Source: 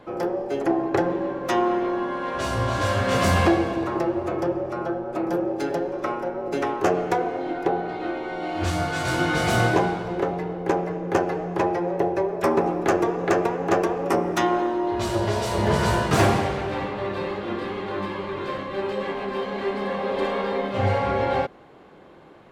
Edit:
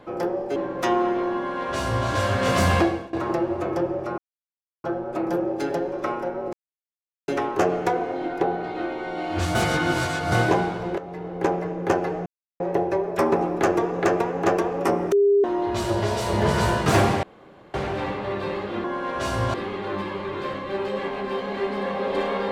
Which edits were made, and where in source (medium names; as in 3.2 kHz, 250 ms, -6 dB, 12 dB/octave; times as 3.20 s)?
0.56–1.22 s: delete
2.03–2.73 s: copy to 17.58 s
3.43–3.79 s: fade out, to -21 dB
4.84 s: insert silence 0.66 s
6.53 s: insert silence 0.75 s
8.80–9.57 s: reverse
10.23–10.68 s: fade in, from -14.5 dB
11.51–11.85 s: mute
14.37–14.69 s: bleep 403 Hz -14 dBFS
16.48 s: insert room tone 0.51 s